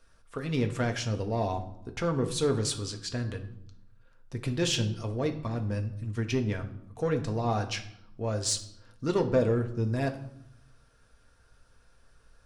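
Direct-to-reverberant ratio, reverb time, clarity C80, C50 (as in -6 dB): 4.5 dB, 0.75 s, 15.0 dB, 12.0 dB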